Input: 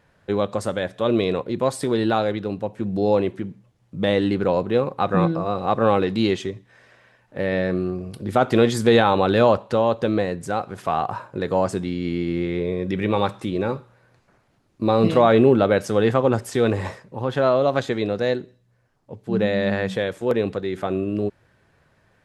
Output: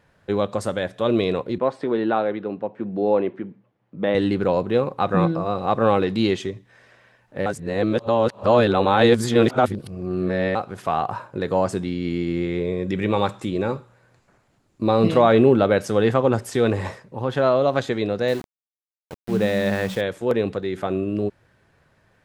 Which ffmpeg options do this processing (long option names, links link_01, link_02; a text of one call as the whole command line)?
ffmpeg -i in.wav -filter_complex "[0:a]asettb=1/sr,asplit=3[link_01][link_02][link_03];[link_01]atrim=end=1.584[link_04];[link_02]atrim=start=1.58:end=4.15,asetpts=PTS-STARTPTS,afade=type=in:duration=0.004:curve=qsin,afade=type=out:start_time=2.566:duration=0.004:curve=qsin,highpass=210,lowpass=2200[link_05];[link_03]atrim=start=4.146[link_06];[link_04][link_05]acrossfade=duration=0.004:curve1=hsin:curve2=qsin[link_07];[link_07][link_06]acrossfade=duration=0.004:curve1=qsin:curve2=hsin,asettb=1/sr,asplit=3[link_08][link_09][link_10];[link_08]atrim=end=12.104[link_11];[link_09]atrim=start=12.1:end=14.83,asetpts=PTS-STARTPTS,afade=type=in:duration=0.004:curve=qsin,afade=type=out:start_time=2.726:duration=0.004:curve=qsin,equalizer=frequency=7300:width=5.3:gain=7.5[link_12];[link_10]atrim=start=14.826[link_13];[link_11][link_12]acrossfade=duration=0.004:curve1=hsin:curve2=qsin[link_14];[link_14][link_13]acrossfade=duration=0.004:curve1=qsin:curve2=hsin,asettb=1/sr,asplit=3[link_15][link_16][link_17];[link_15]atrim=end=18.284[link_18];[link_16]atrim=start=18.28:end=20.01,asetpts=PTS-STARTPTS,afade=type=in:duration=0.004:curve=qsin,afade=type=out:start_time=1.726:duration=0.004:curve=qsin,aeval=exprs='val(0)*gte(abs(val(0)),0.0224)':channel_layout=same[link_19];[link_17]atrim=start=20.006[link_20];[link_18][link_19]acrossfade=duration=0.004:curve1=hsin:curve2=qsin[link_21];[link_21][link_20]acrossfade=duration=0.004:curve1=qsin:curve2=hsin,asplit=3[link_22][link_23][link_24];[link_22]atrim=end=7.462[link_25];[link_23]atrim=start=7.458:end=10.552,asetpts=PTS-STARTPTS,areverse[link_26];[link_24]atrim=start=10.548[link_27];[link_25][link_26]acrossfade=duration=0.004:curve1=hsin:curve2=hsin[link_28];[link_28][link_27]acrossfade=duration=0.004:curve1=hsin:curve2=hsin" out.wav